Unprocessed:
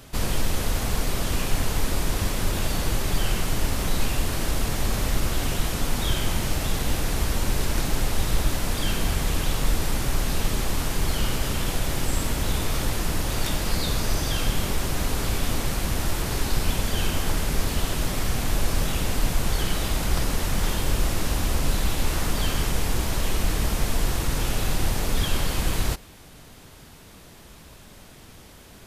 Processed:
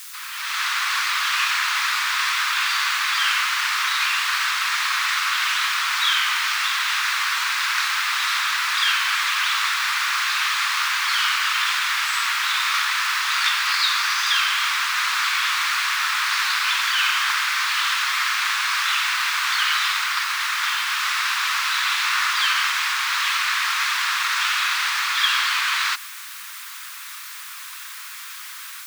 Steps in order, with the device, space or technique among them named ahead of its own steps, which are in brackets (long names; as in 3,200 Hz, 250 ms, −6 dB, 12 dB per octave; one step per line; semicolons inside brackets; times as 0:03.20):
dictaphone (band-pass filter 260–3,700 Hz; automatic gain control gain up to 16 dB; tape wow and flutter; white noise bed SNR 20 dB)
Butterworth high-pass 1,100 Hz 48 dB per octave
parametric band 3,000 Hz −3.5 dB 0.23 octaves